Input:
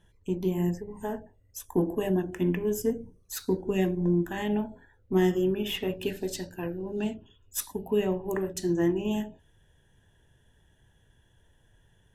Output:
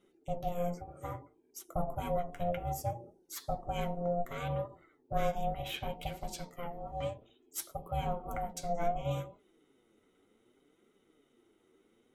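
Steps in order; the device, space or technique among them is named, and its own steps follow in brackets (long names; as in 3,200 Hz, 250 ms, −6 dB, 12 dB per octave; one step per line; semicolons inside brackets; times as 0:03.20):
alien voice (ring modulation 350 Hz; flanger 0.64 Hz, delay 4.7 ms, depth 6.3 ms, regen +42%)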